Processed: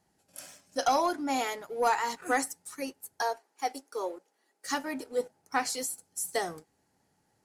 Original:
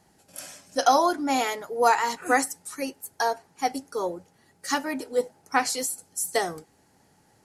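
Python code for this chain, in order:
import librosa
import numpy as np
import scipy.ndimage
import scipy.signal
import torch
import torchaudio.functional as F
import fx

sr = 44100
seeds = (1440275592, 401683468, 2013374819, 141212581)

y = fx.highpass(x, sr, hz=310.0, slope=24, at=(3.22, 4.66))
y = fx.leveller(y, sr, passes=1)
y = y * 10.0 ** (-9.0 / 20.0)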